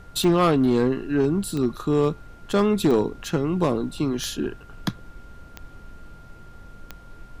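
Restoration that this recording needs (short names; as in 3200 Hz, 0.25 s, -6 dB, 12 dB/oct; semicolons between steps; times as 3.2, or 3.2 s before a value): clip repair -13 dBFS; de-click; notch 1400 Hz, Q 30; noise print and reduce 23 dB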